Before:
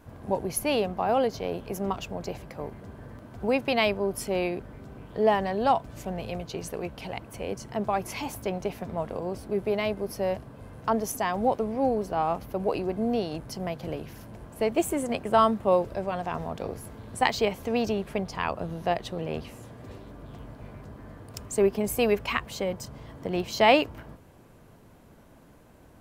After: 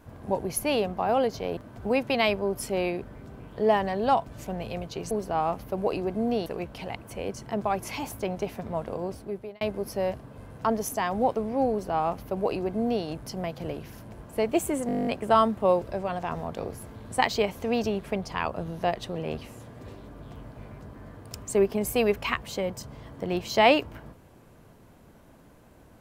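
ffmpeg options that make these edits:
-filter_complex "[0:a]asplit=15[a][b][c][d][e][f][g][h][i][j][k][l][m][n][o];[a]atrim=end=1.572[p];[b]atrim=start=3.148:end=6.692[q];[c]atrim=start=11.928:end=13.282[r];[d]atrim=start=6.688:end=9.84,asetpts=PTS-STARTPTS,afade=t=out:st=2.592:d=0.56[s];[e]atrim=start=9.84:end=15.122,asetpts=PTS-STARTPTS,afade=t=in:d=0.004:c=hsin[t];[f]atrim=start=15.098:end=15.122[u];[g]atrim=start=15.098:end=15.122[v];[h]atrim=start=15.098:end=15.122[w];[i]atrim=start=15.098:end=15.122[x];[j]atrim=start=15.098:end=15.122[y];[k]atrim=start=15.098:end=15.122[z];[l]atrim=start=15.098:end=15.122[aa];[m]atrim=start=15.098:end=15.122[ab];[n]atrim=start=15.098:end=15.122[ac];[o]atrim=start=15.098[ad];[p][q]acrossfade=d=0.004:c1=hsin:c2=hsin[ae];[ae][r]acrossfade=d=0.004:c1=hsin:c2=hsin[af];[s][t]concat=n=2:v=0:a=1[ag];[af][ag]acrossfade=d=0.004:c1=hsin:c2=hsin[ah];[ah][u]acrossfade=d=0.004:c1=hsin:c2=hsin[ai];[ai][v]acrossfade=d=0.004:c1=hsin:c2=hsin[aj];[aj][w]acrossfade=d=0.004:c1=hsin:c2=hsin[ak];[ak][x]acrossfade=d=0.004:c1=hsin:c2=hsin[al];[al][y]acrossfade=d=0.004:c1=hsin:c2=hsin[am];[am][z]acrossfade=d=0.004:c1=hsin:c2=hsin[an];[an][aa]acrossfade=d=0.004:c1=hsin:c2=hsin[ao];[ao][ab]acrossfade=d=0.004:c1=hsin:c2=hsin[ap];[ap][ac]acrossfade=d=0.004:c1=hsin:c2=hsin[aq];[aq][ad]acrossfade=d=0.004:c1=hsin:c2=hsin"

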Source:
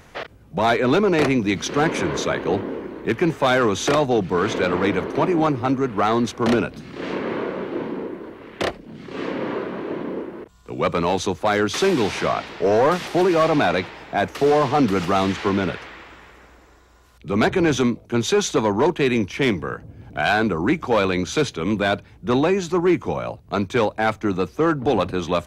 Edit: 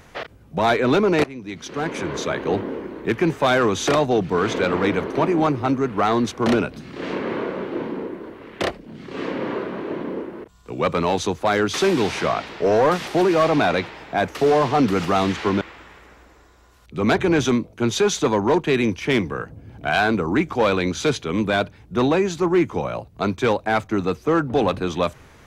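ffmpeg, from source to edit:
-filter_complex "[0:a]asplit=3[a][b][c];[a]atrim=end=1.24,asetpts=PTS-STARTPTS,afade=t=out:st=1.236:d=0.004:c=hsin:silence=0.0891251[d];[b]atrim=start=1.24:end=15.612,asetpts=PTS-STARTPTS,afade=t=in:d=1.34:silence=0.0891251[e];[c]atrim=start=15.928[f];[d][e]concat=n=2:v=0:a=1[g];[g][f]acrossfade=d=0.004:c1=hsin:c2=hsin"

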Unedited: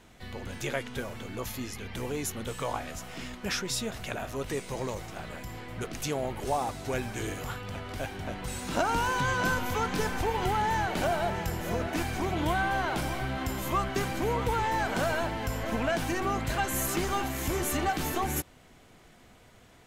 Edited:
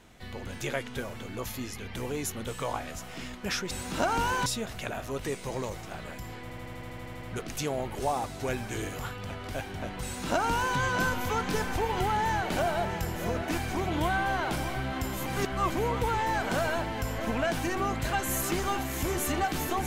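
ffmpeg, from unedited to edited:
-filter_complex "[0:a]asplit=15[a][b][c][d][e][f][g][h][i][j][k][l][m][n][o];[a]atrim=end=3.712[p];[b]atrim=start=8.478:end=9.232[q];[c]atrim=start=3.708:end=5.752[r];[d]atrim=start=5.668:end=5.752[s];[e]atrim=start=5.668:end=5.752[t];[f]atrim=start=5.668:end=5.752[u];[g]atrim=start=5.668:end=5.752[v];[h]atrim=start=5.668:end=5.752[w];[i]atrim=start=5.668:end=5.752[x];[j]atrim=start=5.668:end=5.752[y];[k]atrim=start=5.668:end=5.752[z];[l]atrim=start=5.668:end=5.752[aa];[m]atrim=start=5.668:end=13.712[ab];[n]atrim=start=13.708:end=14.152,asetpts=PTS-STARTPTS,areverse[ac];[o]atrim=start=14.148[ad];[p][q]acrossfade=d=0.004:c1=hsin:c2=hsin[ae];[ae][r]acrossfade=d=0.004:c1=hsin:c2=hsin[af];[af][s]acrossfade=d=0.004:c1=hsin:c2=hsin[ag];[ag][t]acrossfade=d=0.004:c1=hsin:c2=hsin[ah];[ah][u]acrossfade=d=0.004:c1=hsin:c2=hsin[ai];[ai][v]acrossfade=d=0.004:c1=hsin:c2=hsin[aj];[aj][w]acrossfade=d=0.004:c1=hsin:c2=hsin[ak];[ak][x]acrossfade=d=0.004:c1=hsin:c2=hsin[al];[al][y]acrossfade=d=0.004:c1=hsin:c2=hsin[am];[am][z]acrossfade=d=0.004:c1=hsin:c2=hsin[an];[an][aa]acrossfade=d=0.004:c1=hsin:c2=hsin[ao];[ao][ab]acrossfade=d=0.004:c1=hsin:c2=hsin[ap];[ap][ac]acrossfade=d=0.004:c1=hsin:c2=hsin[aq];[aq][ad]acrossfade=d=0.004:c1=hsin:c2=hsin"

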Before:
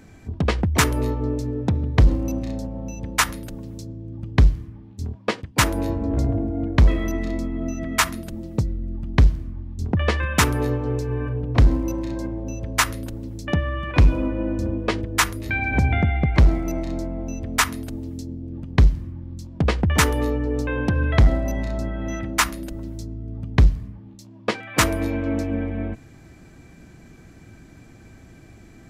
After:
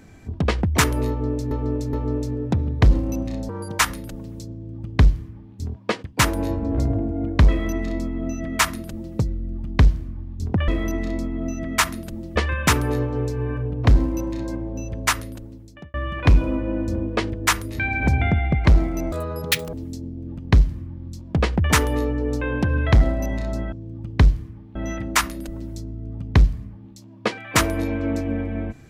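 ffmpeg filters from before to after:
-filter_complex "[0:a]asplit=12[a][b][c][d][e][f][g][h][i][j][k][l];[a]atrim=end=1.512[m];[b]atrim=start=1.088:end=1.512[n];[c]atrim=start=1.088:end=2.654[o];[d]atrim=start=2.65:end=3.18,asetpts=PTS-STARTPTS,asetrate=78057,aresample=44100,atrim=end_sample=13205,asetpts=PTS-STARTPTS[p];[e]atrim=start=3.176:end=10.072[q];[f]atrim=start=6.878:end=8.562[r];[g]atrim=start=10.068:end=13.65,asetpts=PTS-STARTPTS,afade=t=out:st=2.632:d=0.95[s];[h]atrim=start=13.65:end=16.834,asetpts=PTS-STARTPTS,afade=t=in:d=0.004:c=hsin[t];[i]atrim=start=16.83:end=17.99,asetpts=PTS-STARTPTS,asetrate=83349,aresample=44100[u];[j]atrim=start=17.986:end=21.982[v];[k]atrim=start=3.908:end=4.942[w];[l]atrim=start=21.978[x];[m][n]acrossfade=d=0.004:c1=hsin:c2=hsin[y];[y][o]acrossfade=d=0.004:c1=hsin:c2=hsin[z];[z][p]acrossfade=d=0.004:c1=hsin:c2=hsin[aa];[aa][q]acrossfade=d=0.004:c1=hsin:c2=hsin[ab];[ab][r]acrossfade=d=0.004:c1=hsin:c2=hsin[ac];[s][t]concat=n=2:v=0:a=1[ad];[ac][ad]acrossfade=d=0.004:c1=hsin:c2=hsin[ae];[ae][u]acrossfade=d=0.004:c1=hsin:c2=hsin[af];[af][v]acrossfade=d=0.004:c1=hsin:c2=hsin[ag];[ag][w]acrossfade=d=0.004:c1=hsin:c2=hsin[ah];[ah][x]acrossfade=d=0.004:c1=hsin:c2=hsin"

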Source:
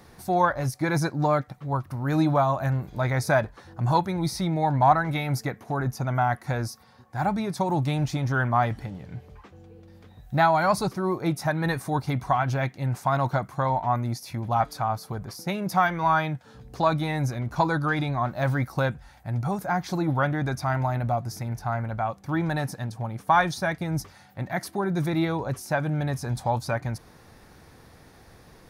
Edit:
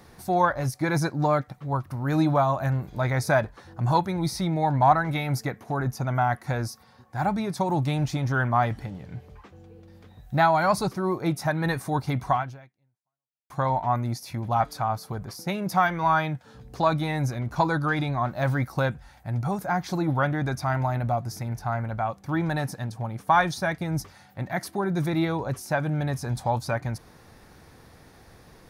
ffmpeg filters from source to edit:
-filter_complex "[0:a]asplit=2[a][b];[a]atrim=end=13.5,asetpts=PTS-STARTPTS,afade=t=out:st=12.36:d=1.14:c=exp[c];[b]atrim=start=13.5,asetpts=PTS-STARTPTS,afade=t=in:d=0.004:c=hsin[d];[c][d]concat=n=2:v=0:a=1"

